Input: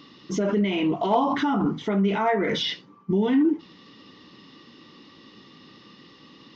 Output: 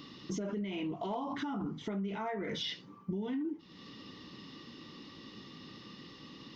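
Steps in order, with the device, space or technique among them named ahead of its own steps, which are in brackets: ASMR close-microphone chain (bass shelf 180 Hz +7.5 dB; compression 4:1, threshold -34 dBFS, peak gain reduction 16 dB; treble shelf 6.2 kHz +7.5 dB); trim -3 dB

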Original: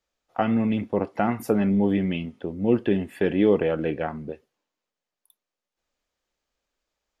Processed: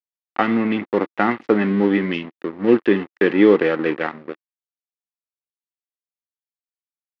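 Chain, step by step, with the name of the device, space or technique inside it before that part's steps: blown loudspeaker (crossover distortion -36 dBFS; cabinet simulation 230–4300 Hz, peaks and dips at 330 Hz +4 dB, 650 Hz -7 dB, 1.2 kHz +4 dB, 1.9 kHz +8 dB); trim +7 dB

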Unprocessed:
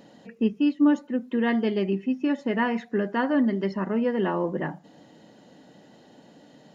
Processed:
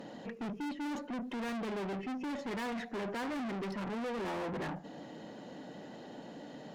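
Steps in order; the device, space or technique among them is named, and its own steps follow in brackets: tube preamp driven hard (valve stage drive 42 dB, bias 0.3; bass shelf 120 Hz -8 dB; treble shelf 3.7 kHz -8 dB); trim +7 dB

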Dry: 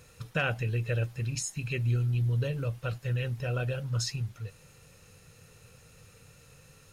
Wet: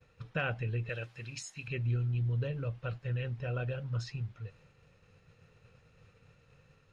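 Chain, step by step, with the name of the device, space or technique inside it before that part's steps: hearing-loss simulation (low-pass 3.1 kHz 12 dB/octave; expander -53 dBFS); 0.89–1.68 s: tilt EQ +3 dB/octave; trim -4 dB

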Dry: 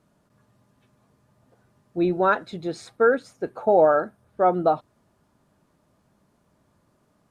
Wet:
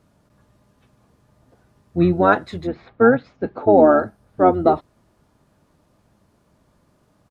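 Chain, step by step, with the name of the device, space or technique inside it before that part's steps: 2.66–3.72 s: low-pass 2.4 kHz -> 5.2 kHz 24 dB/octave; octave pedal (harmony voices -12 st -4 dB); trim +3.5 dB

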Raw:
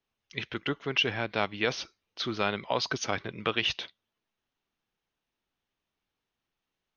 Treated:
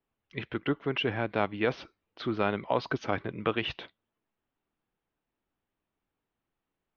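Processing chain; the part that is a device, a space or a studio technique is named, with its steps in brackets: phone in a pocket (low-pass 3.4 kHz 12 dB/octave; peaking EQ 300 Hz +3 dB 0.27 oct; treble shelf 2.2 kHz -11 dB); trim +2.5 dB

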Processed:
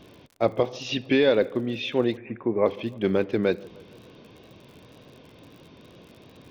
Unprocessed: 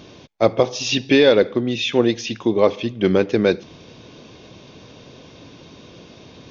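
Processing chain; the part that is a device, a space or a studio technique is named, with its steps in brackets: lo-fi chain (low-pass 3.6 kHz 12 dB/octave; wow and flutter; crackle 56 per s -35 dBFS); 2.17–2.66 s: steep low-pass 2.4 kHz 96 dB/octave; feedback echo behind a low-pass 152 ms, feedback 62%, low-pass 1.4 kHz, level -23 dB; trim -6.5 dB

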